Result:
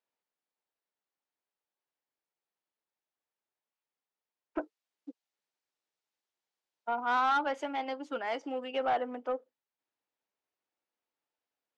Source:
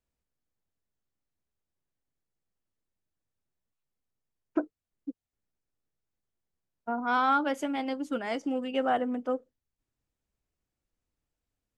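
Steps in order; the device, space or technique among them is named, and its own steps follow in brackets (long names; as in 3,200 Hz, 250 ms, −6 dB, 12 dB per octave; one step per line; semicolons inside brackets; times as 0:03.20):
intercom (band-pass filter 450–4,400 Hz; parametric band 890 Hz +4.5 dB 0.29 octaves; soft clipping −22 dBFS, distortion −14 dB)
0:04.61–0:07.05: high-shelf EQ 3,300 Hz +11.5 dB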